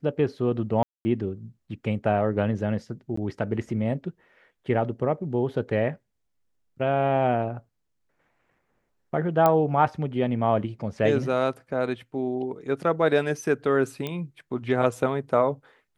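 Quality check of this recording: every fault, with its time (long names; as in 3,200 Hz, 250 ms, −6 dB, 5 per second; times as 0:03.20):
0:00.83–0:01.05: drop-out 220 ms
0:03.16–0:03.17: drop-out 14 ms
0:09.46: click −8 dBFS
0:14.07: click −17 dBFS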